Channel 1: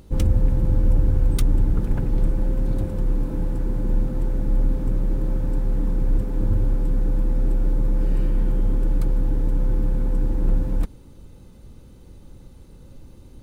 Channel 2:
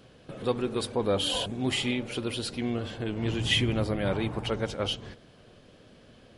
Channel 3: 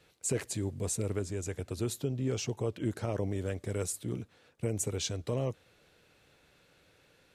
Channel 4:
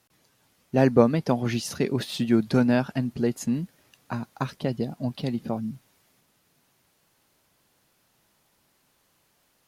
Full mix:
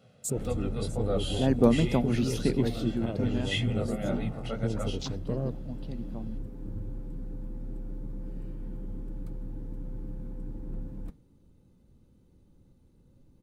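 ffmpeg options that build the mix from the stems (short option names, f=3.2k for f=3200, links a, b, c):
-filter_complex "[0:a]flanger=delay=5.8:depth=6.9:regen=-80:speed=0.3:shape=triangular,adelay=250,volume=-15dB[a];[1:a]highpass=110,aecho=1:1:1.5:0.94,flanger=delay=16.5:depth=6.7:speed=1.9,volume=-7.5dB[b];[2:a]afwtdn=0.0126,highshelf=f=5.3k:g=7.5,volume=-5dB[c];[3:a]adelay=650,volume=-7dB,afade=t=in:st=1.25:d=0.51:silence=0.281838,afade=t=out:st=2.61:d=0.3:silence=0.281838[d];[a][b][c][d]amix=inputs=4:normalize=0,equalizer=f=200:t=o:w=2.4:g=7.5"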